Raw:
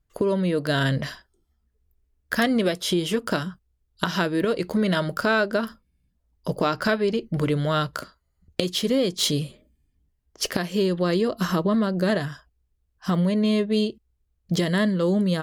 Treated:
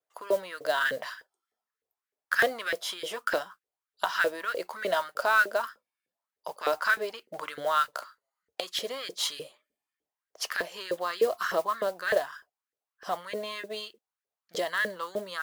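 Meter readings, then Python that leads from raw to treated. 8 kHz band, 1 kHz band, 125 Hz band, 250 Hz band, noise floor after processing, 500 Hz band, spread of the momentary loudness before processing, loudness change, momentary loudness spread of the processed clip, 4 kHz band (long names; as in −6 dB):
−6.0 dB, −0.5 dB, −30.5 dB, −23.5 dB, below −85 dBFS, −6.0 dB, 8 LU, −6.0 dB, 15 LU, −6.0 dB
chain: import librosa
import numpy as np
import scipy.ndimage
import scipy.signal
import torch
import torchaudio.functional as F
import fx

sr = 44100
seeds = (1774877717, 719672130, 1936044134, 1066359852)

y = fx.vibrato(x, sr, rate_hz=0.72, depth_cents=23.0)
y = fx.filter_lfo_highpass(y, sr, shape='saw_up', hz=3.3, low_hz=460.0, high_hz=1800.0, q=4.1)
y = fx.mod_noise(y, sr, seeds[0], snr_db=22)
y = F.gain(torch.from_numpy(y), -7.0).numpy()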